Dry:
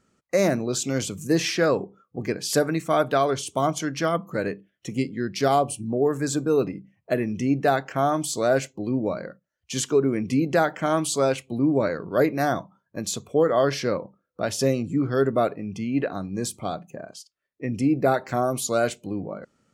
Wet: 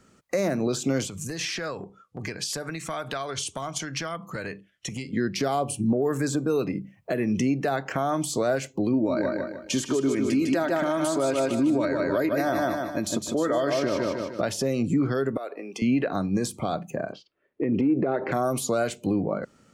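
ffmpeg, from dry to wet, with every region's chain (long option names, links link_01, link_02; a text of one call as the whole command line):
ffmpeg -i in.wav -filter_complex "[0:a]asettb=1/sr,asplit=3[link_01][link_02][link_03];[link_01]atrim=end=1.074[link_04];[link_02]atrim=start=1.07:end=5.13,asetpts=PTS-STARTPTS,afade=type=in:duration=0.004:curve=qsin,afade=type=out:start_time=4.056:duration=0.004:curve=qsin,lowpass=10000,acompressor=threshold=-29dB:ratio=8:attack=3.2:release=140:knee=1:detection=peak,equalizer=frequency=320:width_type=o:width=3:gain=-11[link_05];[link_03]atrim=start=5.126[link_06];[link_04][link_05]acrossfade=duration=0.004:curve1=hsin:curve2=qsin[link_07];[link_07][link_06]acrossfade=duration=0.004:curve1=qsin:curve2=hsin,asettb=1/sr,asplit=3[link_08][link_09][link_10];[link_08]atrim=end=8.934[link_11];[link_09]atrim=start=8.93:end=14.41,asetpts=PTS-STARTPTS,afade=type=in:duration=0.004:curve=qsin,afade=type=out:start_time=5.476:duration=0.004:curve=qsin,aecho=1:1:3.2:0.5,atrim=end_sample=241668,aecho=1:1:152|304|456|608:0.501|0.18|0.065|0.0234,atrim=end_sample=241668[link_12];[link_10]atrim=start=14.406[link_13];[link_11][link_12]acrossfade=duration=0.004:curve1=hsin:curve2=qsin[link_14];[link_14][link_13]acrossfade=duration=0.004:curve1=qsin:curve2=hsin,asettb=1/sr,asplit=3[link_15][link_16][link_17];[link_15]atrim=end=15.374[link_18];[link_16]atrim=start=15.37:end=15.82,asetpts=PTS-STARTPTS,afade=type=in:duration=0.004:curve=qsin,afade=type=out:start_time=0.446:duration=0.004:curve=qsin,highpass=frequency=360:width=0.5412,highpass=frequency=360:width=1.3066,acompressor=threshold=-41dB:ratio=2.5:attack=3.2:release=140:knee=1:detection=peak[link_19];[link_17]atrim=start=15.816[link_20];[link_18][link_19]acrossfade=duration=0.004:curve1=hsin:curve2=qsin[link_21];[link_21][link_20]acrossfade=duration=0.004:curve1=qsin:curve2=hsin,asettb=1/sr,asplit=3[link_22][link_23][link_24];[link_22]atrim=end=17.124[link_25];[link_23]atrim=start=17.12:end=18.32,asetpts=PTS-STARTPTS,afade=type=in:duration=0.004:curve=qsin,afade=type=out:start_time=1.196:duration=0.004:curve=qsin,lowpass=frequency=3000:width=0.5412,lowpass=frequency=3000:width=1.3066,equalizer=frequency=370:width_type=o:width=1.7:gain=13.5,acompressor=threshold=-20dB:ratio=4:attack=3.2:release=140:knee=1:detection=peak[link_26];[link_24]atrim=start=18.316[link_27];[link_25][link_26]acrossfade=duration=0.004:curve1=hsin:curve2=qsin[link_28];[link_28][link_27]acrossfade=duration=0.004:curve1=qsin:curve2=hsin,acrossover=split=130|1500[link_29][link_30][link_31];[link_29]acompressor=threshold=-45dB:ratio=4[link_32];[link_30]acompressor=threshold=-24dB:ratio=4[link_33];[link_31]acompressor=threshold=-38dB:ratio=4[link_34];[link_32][link_33][link_34]amix=inputs=3:normalize=0,alimiter=limit=-24dB:level=0:latency=1:release=230,volume=8.5dB" out.wav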